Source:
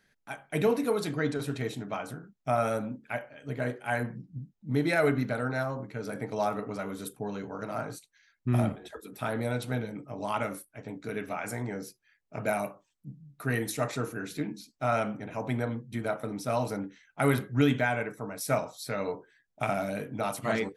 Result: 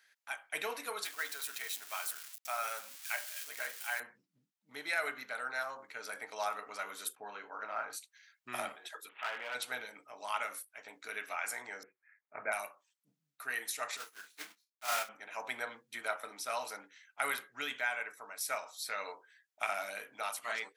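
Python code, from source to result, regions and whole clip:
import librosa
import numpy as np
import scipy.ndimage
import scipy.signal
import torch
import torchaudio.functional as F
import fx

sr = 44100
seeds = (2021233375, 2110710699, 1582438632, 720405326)

y = fx.chain(x, sr, fx.crossing_spikes(level_db=-32.5),
    fx.highpass(hz=810.0, slope=6), at=(1.05, 4.0))
y = fx.chain(y, sr, fx.lowpass(hz=2500.0, slope=12),
    fx.doubler(ms=28.0, db=-10.5), at=(7.15, 7.93))
y = fx.chain(y, sr, fx.cvsd(bps=16000),
    fx.highpass(hz=450.0, slope=6),
    fx.clip_hard(threshold_db=-30.0), at=(9.09, 9.55))
y = fx.chain(y, sr, fx.steep_lowpass(hz=2300.0, slope=72),
    fx.low_shelf(hz=370.0, db=8.0), at=(11.83, 12.52))
y = fx.chain(y, sr, fx.block_float(bits=3),
    fx.doubler(ms=30.0, db=-2.5),
    fx.upward_expand(threshold_db=-47.0, expansion=2.5), at=(13.97, 15.09))
y = scipy.signal.sosfilt(scipy.signal.butter(2, 1200.0, 'highpass', fs=sr, output='sos'), y)
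y = fx.rider(y, sr, range_db=3, speed_s=0.5)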